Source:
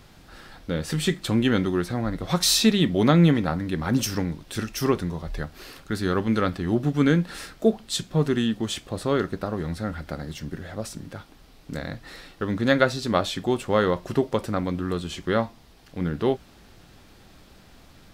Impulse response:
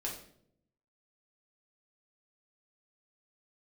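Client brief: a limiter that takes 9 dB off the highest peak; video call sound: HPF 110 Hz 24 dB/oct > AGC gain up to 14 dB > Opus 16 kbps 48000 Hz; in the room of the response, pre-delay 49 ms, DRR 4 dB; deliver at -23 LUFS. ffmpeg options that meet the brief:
-filter_complex "[0:a]alimiter=limit=-13dB:level=0:latency=1,asplit=2[a][b];[1:a]atrim=start_sample=2205,adelay=49[c];[b][c]afir=irnorm=-1:irlink=0,volume=-5.5dB[d];[a][d]amix=inputs=2:normalize=0,highpass=f=110:w=0.5412,highpass=f=110:w=1.3066,dynaudnorm=m=14dB,volume=0.5dB" -ar 48000 -c:a libopus -b:a 16k

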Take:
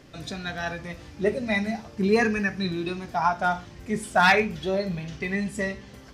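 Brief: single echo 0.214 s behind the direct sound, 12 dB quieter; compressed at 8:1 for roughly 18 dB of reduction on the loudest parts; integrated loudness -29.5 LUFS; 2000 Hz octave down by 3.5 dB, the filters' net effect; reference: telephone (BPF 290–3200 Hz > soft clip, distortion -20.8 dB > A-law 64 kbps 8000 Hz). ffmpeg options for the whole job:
-af "equalizer=f=2k:t=o:g=-4,acompressor=threshold=-35dB:ratio=8,highpass=290,lowpass=3.2k,aecho=1:1:214:0.251,asoftclip=threshold=-29.5dB,volume=13dB" -ar 8000 -c:a pcm_alaw

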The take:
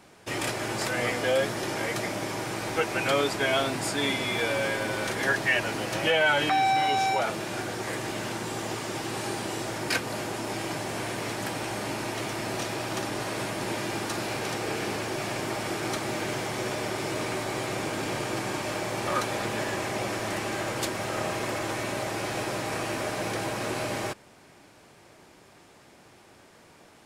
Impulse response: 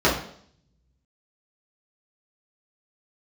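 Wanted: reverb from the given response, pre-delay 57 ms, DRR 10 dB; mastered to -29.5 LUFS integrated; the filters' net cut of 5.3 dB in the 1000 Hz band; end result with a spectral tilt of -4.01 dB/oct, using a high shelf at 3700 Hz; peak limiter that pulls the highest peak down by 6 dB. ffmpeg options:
-filter_complex "[0:a]equalizer=f=1k:t=o:g=-8,highshelf=f=3.7k:g=5,alimiter=limit=-20dB:level=0:latency=1,asplit=2[a][b];[1:a]atrim=start_sample=2205,adelay=57[c];[b][c]afir=irnorm=-1:irlink=0,volume=-30dB[d];[a][d]amix=inputs=2:normalize=0,volume=0.5dB"

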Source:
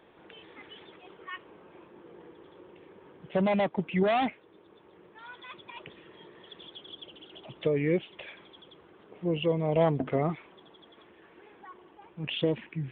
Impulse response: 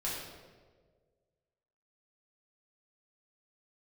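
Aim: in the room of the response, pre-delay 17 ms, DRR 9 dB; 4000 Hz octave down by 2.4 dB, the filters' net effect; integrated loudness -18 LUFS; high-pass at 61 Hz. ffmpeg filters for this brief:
-filter_complex "[0:a]highpass=61,equalizer=f=4k:t=o:g=-3.5,asplit=2[a][b];[1:a]atrim=start_sample=2205,adelay=17[c];[b][c]afir=irnorm=-1:irlink=0,volume=-13dB[d];[a][d]amix=inputs=2:normalize=0,volume=11.5dB"

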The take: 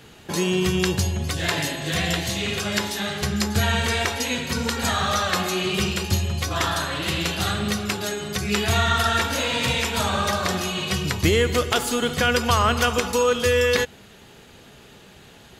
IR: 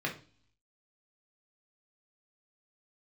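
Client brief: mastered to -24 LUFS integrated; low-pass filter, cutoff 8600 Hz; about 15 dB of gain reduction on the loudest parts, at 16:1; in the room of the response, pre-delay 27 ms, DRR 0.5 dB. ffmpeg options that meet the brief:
-filter_complex "[0:a]lowpass=8.6k,acompressor=threshold=-30dB:ratio=16,asplit=2[a][b];[1:a]atrim=start_sample=2205,adelay=27[c];[b][c]afir=irnorm=-1:irlink=0,volume=-6.5dB[d];[a][d]amix=inputs=2:normalize=0,volume=7dB"

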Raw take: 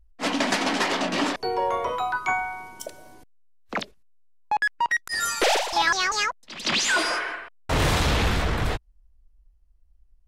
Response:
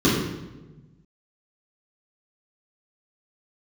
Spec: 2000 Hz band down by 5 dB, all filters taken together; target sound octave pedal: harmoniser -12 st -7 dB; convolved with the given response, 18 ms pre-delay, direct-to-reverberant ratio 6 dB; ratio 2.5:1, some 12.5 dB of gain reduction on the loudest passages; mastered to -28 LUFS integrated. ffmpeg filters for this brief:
-filter_complex "[0:a]equalizer=f=2k:t=o:g=-6.5,acompressor=threshold=-39dB:ratio=2.5,asplit=2[a][b];[1:a]atrim=start_sample=2205,adelay=18[c];[b][c]afir=irnorm=-1:irlink=0,volume=-25.5dB[d];[a][d]amix=inputs=2:normalize=0,asplit=2[e][f];[f]asetrate=22050,aresample=44100,atempo=2,volume=-7dB[g];[e][g]amix=inputs=2:normalize=0,volume=6dB"

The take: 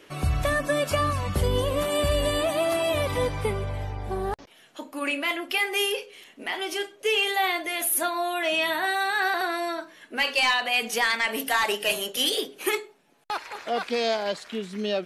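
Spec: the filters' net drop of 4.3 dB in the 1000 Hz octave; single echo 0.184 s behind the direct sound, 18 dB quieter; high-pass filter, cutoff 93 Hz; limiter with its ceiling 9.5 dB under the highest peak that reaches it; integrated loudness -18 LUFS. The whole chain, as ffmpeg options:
-af "highpass=93,equalizer=f=1k:t=o:g=-6,alimiter=limit=-22dB:level=0:latency=1,aecho=1:1:184:0.126,volume=13dB"

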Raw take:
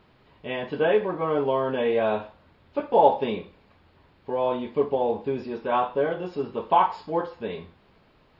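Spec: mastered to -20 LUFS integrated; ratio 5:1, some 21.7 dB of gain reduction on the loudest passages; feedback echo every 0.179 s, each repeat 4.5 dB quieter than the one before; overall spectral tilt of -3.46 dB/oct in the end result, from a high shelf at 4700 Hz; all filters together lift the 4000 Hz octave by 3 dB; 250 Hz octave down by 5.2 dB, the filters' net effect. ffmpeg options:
-af "equalizer=f=250:t=o:g=-7,equalizer=f=4k:t=o:g=6.5,highshelf=f=4.7k:g=-5.5,acompressor=threshold=-39dB:ratio=5,aecho=1:1:179|358|537|716|895|1074|1253|1432|1611:0.596|0.357|0.214|0.129|0.0772|0.0463|0.0278|0.0167|0.01,volume=20.5dB"

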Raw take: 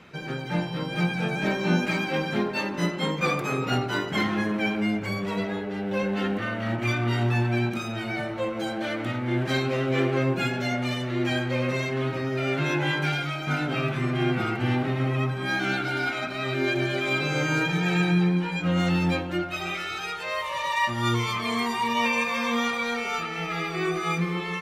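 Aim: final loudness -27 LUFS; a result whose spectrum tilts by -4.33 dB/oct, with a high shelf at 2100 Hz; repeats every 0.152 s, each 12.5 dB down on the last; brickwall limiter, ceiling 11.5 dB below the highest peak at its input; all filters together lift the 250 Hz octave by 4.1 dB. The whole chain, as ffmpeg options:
-af "equalizer=f=250:t=o:g=5.5,highshelf=f=2.1k:g=5,alimiter=limit=-19dB:level=0:latency=1,aecho=1:1:152|304|456:0.237|0.0569|0.0137"

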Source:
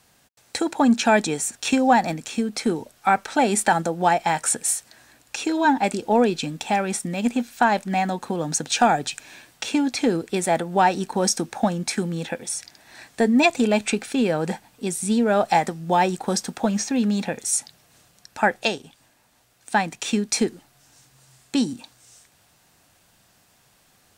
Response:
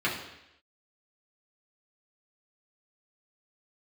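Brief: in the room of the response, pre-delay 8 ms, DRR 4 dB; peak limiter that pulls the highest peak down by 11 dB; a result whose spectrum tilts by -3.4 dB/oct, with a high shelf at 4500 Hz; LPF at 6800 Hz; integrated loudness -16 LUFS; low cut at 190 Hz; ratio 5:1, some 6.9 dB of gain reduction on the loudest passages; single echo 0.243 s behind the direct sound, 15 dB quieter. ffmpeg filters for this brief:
-filter_complex "[0:a]highpass=190,lowpass=6.8k,highshelf=f=4.5k:g=8.5,acompressor=threshold=-20dB:ratio=5,alimiter=limit=-17dB:level=0:latency=1,aecho=1:1:243:0.178,asplit=2[a][b];[1:a]atrim=start_sample=2205,adelay=8[c];[b][c]afir=irnorm=-1:irlink=0,volume=-15.5dB[d];[a][d]amix=inputs=2:normalize=0,volume=11dB"

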